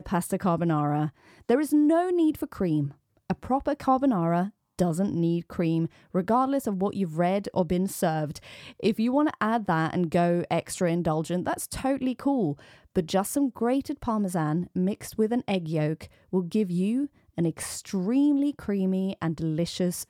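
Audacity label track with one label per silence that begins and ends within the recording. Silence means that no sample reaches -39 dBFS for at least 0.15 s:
1.090000	1.490000	silence
2.910000	3.300000	silence
4.490000	4.790000	silence
5.870000	6.150000	silence
12.590000	12.960000	silence
16.060000	16.330000	silence
17.060000	17.380000	silence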